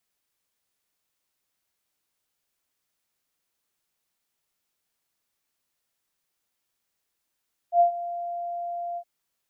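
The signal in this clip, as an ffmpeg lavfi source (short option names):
-f lavfi -i "aevalsrc='0.224*sin(2*PI*694*t)':d=1.316:s=44100,afade=t=in:d=0.083,afade=t=out:st=0.083:d=0.107:silence=0.158,afade=t=out:st=1.25:d=0.066"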